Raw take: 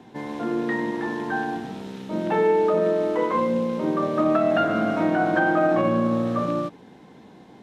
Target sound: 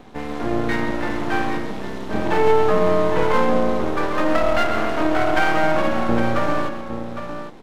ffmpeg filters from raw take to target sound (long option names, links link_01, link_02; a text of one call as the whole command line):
ffmpeg -i in.wav -filter_complex "[0:a]asettb=1/sr,asplit=3[link_01][link_02][link_03];[link_01]atrim=end=3.844[link_04];[link_02]atrim=start=3.84:end=6.09,asetpts=PTS-STARTPTS,afade=type=in:duration=0.004:curve=qsin,afade=type=out:start_time=2.246:duration=0.004:curve=qsin,highpass=frequency=430:poles=1[link_05];[link_03]atrim=start=6.086[link_06];[link_04][link_05]acrossfade=duration=0.004:curve1=hsin:curve2=qsin[link_07];[link_07][link_06]acrossfade=duration=0.004:curve1=qsin:curve2=hsin,aeval=exprs='max(val(0),0)':channel_layout=same,aecho=1:1:130|809:0.251|0.355,volume=7dB" out.wav